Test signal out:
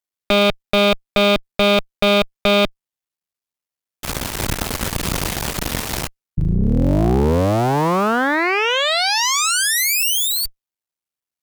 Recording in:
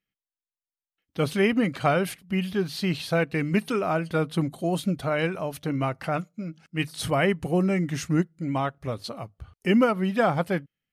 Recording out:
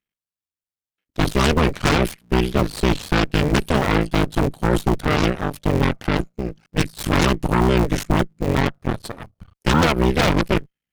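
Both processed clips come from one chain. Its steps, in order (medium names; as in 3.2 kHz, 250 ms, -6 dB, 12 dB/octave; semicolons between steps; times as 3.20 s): cycle switcher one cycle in 3, muted; dynamic bell 160 Hz, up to +6 dB, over -41 dBFS, Q 1.5; Chebyshev shaper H 8 -6 dB, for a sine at -8.5 dBFS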